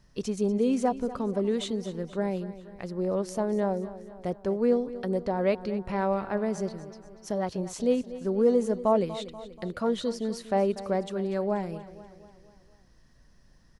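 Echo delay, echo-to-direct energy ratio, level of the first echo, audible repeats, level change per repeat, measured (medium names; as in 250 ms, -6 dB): 241 ms, -13.5 dB, -15.0 dB, 4, -5.5 dB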